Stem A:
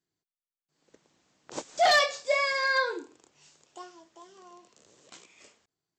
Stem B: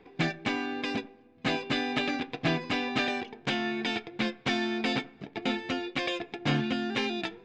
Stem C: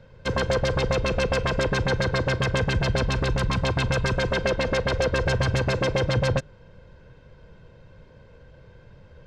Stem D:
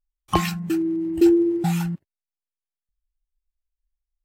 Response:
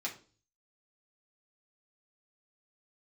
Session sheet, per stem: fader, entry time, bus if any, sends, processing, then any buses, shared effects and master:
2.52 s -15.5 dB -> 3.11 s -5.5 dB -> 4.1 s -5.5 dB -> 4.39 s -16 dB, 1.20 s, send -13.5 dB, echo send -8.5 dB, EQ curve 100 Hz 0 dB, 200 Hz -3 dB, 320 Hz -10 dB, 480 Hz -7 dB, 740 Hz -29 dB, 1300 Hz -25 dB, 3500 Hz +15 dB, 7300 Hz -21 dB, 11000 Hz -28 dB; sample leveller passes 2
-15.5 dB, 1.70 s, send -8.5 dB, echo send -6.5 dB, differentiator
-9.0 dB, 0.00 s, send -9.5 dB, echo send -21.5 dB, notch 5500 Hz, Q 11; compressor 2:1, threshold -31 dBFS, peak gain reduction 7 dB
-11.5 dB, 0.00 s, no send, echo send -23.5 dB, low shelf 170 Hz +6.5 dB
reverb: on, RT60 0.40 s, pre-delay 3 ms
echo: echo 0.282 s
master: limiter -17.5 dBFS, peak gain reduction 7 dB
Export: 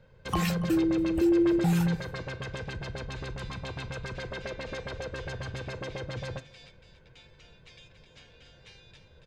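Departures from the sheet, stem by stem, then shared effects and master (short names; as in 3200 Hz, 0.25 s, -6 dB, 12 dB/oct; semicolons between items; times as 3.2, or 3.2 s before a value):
stem A: muted; stem D -11.5 dB -> -3.5 dB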